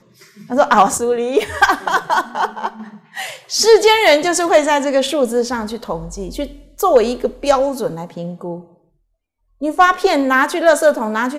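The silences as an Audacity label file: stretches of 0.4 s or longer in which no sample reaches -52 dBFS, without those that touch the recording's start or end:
8.890000	9.600000	silence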